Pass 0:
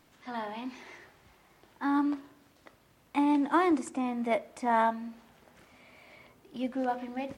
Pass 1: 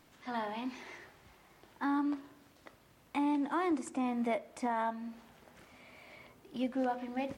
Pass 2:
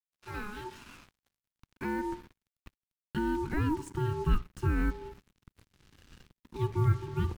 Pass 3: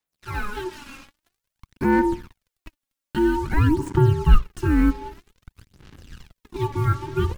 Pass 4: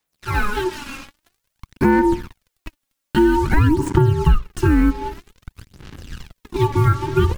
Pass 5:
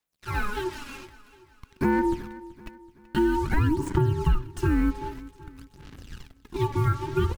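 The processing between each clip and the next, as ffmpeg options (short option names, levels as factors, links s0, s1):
-af "alimiter=limit=0.0631:level=0:latency=1:release=338"
-af "acrusher=bits=7:mix=0:aa=0.5,aeval=exprs='val(0)*sin(2*PI*630*n/s)':c=same,asubboost=boost=7.5:cutoff=240"
-af "aphaser=in_gain=1:out_gain=1:delay=3.7:decay=0.6:speed=0.51:type=sinusoidal,volume=2.37"
-af "acompressor=threshold=0.112:ratio=8,volume=2.66"
-af "aecho=1:1:380|760|1140|1520:0.126|0.0567|0.0255|0.0115,volume=0.398"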